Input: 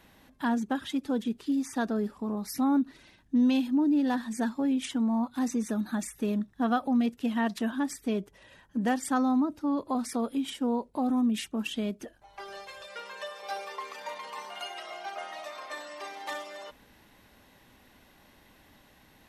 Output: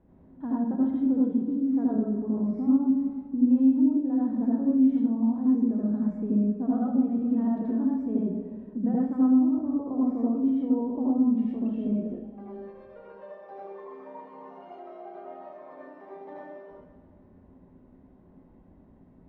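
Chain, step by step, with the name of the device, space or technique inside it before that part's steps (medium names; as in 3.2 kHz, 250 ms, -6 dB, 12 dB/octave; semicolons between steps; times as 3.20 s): plate-style reverb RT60 1.7 s, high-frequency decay 1×, DRR 7.5 dB; television next door (compression 4:1, threshold -28 dBFS, peak gain reduction 8 dB; low-pass 460 Hz 12 dB/octave; reverberation RT60 0.40 s, pre-delay 74 ms, DRR -5 dB)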